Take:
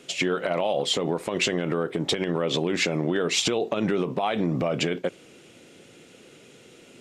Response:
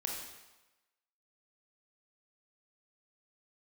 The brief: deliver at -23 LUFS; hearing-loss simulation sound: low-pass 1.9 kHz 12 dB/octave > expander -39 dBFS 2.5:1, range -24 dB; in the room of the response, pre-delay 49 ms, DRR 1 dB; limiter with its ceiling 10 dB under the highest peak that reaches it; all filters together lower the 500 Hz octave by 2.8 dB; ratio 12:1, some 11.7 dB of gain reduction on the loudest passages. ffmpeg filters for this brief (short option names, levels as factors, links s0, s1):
-filter_complex "[0:a]equalizer=f=500:t=o:g=-3.5,acompressor=threshold=0.0224:ratio=12,alimiter=level_in=2.11:limit=0.0631:level=0:latency=1,volume=0.473,asplit=2[s0][s1];[1:a]atrim=start_sample=2205,adelay=49[s2];[s1][s2]afir=irnorm=-1:irlink=0,volume=0.708[s3];[s0][s3]amix=inputs=2:normalize=0,lowpass=1900,agate=range=0.0631:threshold=0.0112:ratio=2.5,volume=6.68"